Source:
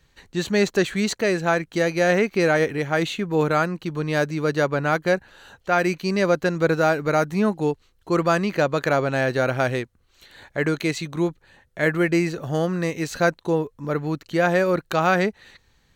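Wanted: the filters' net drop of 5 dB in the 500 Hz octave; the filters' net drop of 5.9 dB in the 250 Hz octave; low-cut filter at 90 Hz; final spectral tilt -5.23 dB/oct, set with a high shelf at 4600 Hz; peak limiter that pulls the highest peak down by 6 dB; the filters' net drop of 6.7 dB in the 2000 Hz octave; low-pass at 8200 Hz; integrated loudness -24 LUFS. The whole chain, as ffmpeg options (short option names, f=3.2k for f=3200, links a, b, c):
-af "highpass=90,lowpass=8.2k,equalizer=f=250:t=o:g=-8,equalizer=f=500:t=o:g=-3.5,equalizer=f=2k:t=o:g=-7.5,highshelf=f=4.6k:g=-7.5,volume=5dB,alimiter=limit=-12.5dB:level=0:latency=1"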